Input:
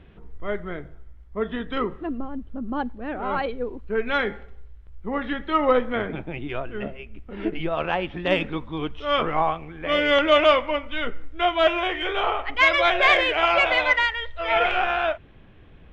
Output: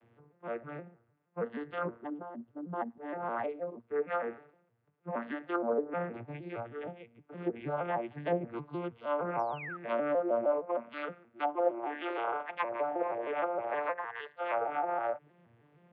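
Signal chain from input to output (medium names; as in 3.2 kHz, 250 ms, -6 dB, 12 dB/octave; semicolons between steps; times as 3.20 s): vocoder on a broken chord major triad, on A#2, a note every 156 ms; three-band isolator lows -12 dB, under 430 Hz, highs -13 dB, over 2.9 kHz; in parallel at -11.5 dB: saturation -15.5 dBFS, distortion -17 dB; on the sum: painted sound fall, 9.39–9.77 s, 1.2–6 kHz -34 dBFS; low-pass that closes with the level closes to 570 Hz, closed at -18 dBFS; trim -7 dB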